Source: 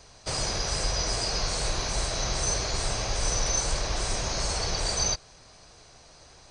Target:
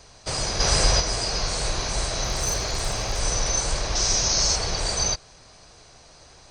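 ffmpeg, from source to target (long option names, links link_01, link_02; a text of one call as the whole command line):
ffmpeg -i in.wav -filter_complex "[0:a]asplit=3[link_01][link_02][link_03];[link_01]afade=type=out:start_time=0.59:duration=0.02[link_04];[link_02]acontrast=60,afade=type=in:start_time=0.59:duration=0.02,afade=type=out:start_time=0.99:duration=0.02[link_05];[link_03]afade=type=in:start_time=0.99:duration=0.02[link_06];[link_04][link_05][link_06]amix=inputs=3:normalize=0,asettb=1/sr,asplit=3[link_07][link_08][link_09];[link_07]atrim=end=2.224[link_10];[link_08]atrim=start=2.22:end=3.2,asetpts=PTS-STARTPTS,afade=type=in:duration=0.004:curve=qsin,afade=type=out:start_time=0.976:duration=0.004:curve=qsin,aeval=exprs='clip(val(0),-1,0.0631)':channel_layout=same[link_11];[link_09]atrim=start=3.196[link_12];[link_10][link_11]acrossfade=duration=0.004:curve1=hsin:curve2=qsin[link_13];[link_13][link_12]acrossfade=duration=0.004:curve1=qsin:curve2=hsin,asettb=1/sr,asplit=3[link_14][link_15][link_16];[link_14]atrim=end=3.954[link_17];[link_15]atrim=start=3.95:end=4.56,asetpts=PTS-STARTPTS,afade=type=in:duration=0.004:curve=qsin,afade=type=out:start_time=0.606:duration=0.004:curve=qsin,lowpass=frequency=5800:width_type=q:width=3.9[link_18];[link_16]atrim=start=4.556[link_19];[link_17][link_18]acrossfade=duration=0.004:curve1=hsin:curve2=qsin[link_20];[link_20][link_19]acrossfade=duration=0.004:curve1=qsin:curve2=hsin,volume=2.5dB" out.wav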